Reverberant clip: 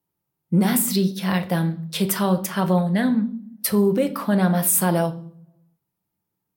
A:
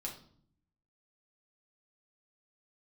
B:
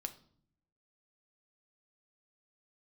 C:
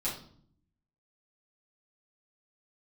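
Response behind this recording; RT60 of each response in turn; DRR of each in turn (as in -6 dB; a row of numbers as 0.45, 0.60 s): B; 0.55, 0.60, 0.55 s; -2.0, 7.5, -9.5 dB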